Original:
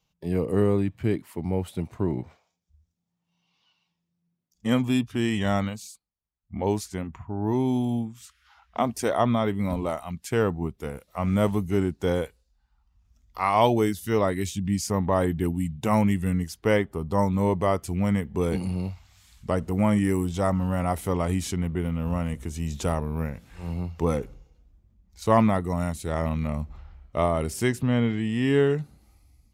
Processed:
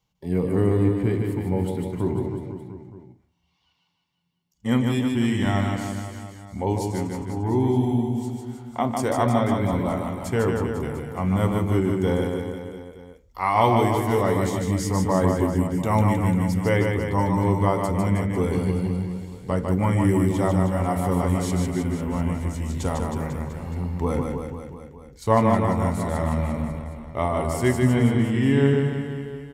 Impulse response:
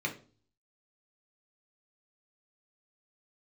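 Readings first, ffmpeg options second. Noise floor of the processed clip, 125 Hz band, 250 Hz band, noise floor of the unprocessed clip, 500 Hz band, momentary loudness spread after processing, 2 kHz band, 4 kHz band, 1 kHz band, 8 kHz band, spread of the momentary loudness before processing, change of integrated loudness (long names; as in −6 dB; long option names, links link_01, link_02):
−68 dBFS, +4.5 dB, +3.0 dB, −78 dBFS, +2.0 dB, 12 LU, +2.5 dB, +0.5 dB, +3.0 dB, +1.0 dB, 11 LU, +2.5 dB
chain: -filter_complex "[0:a]aecho=1:1:150|315|496.5|696.2|915.8:0.631|0.398|0.251|0.158|0.1,asplit=2[link_01][link_02];[1:a]atrim=start_sample=2205[link_03];[link_02][link_03]afir=irnorm=-1:irlink=0,volume=-10.5dB[link_04];[link_01][link_04]amix=inputs=2:normalize=0"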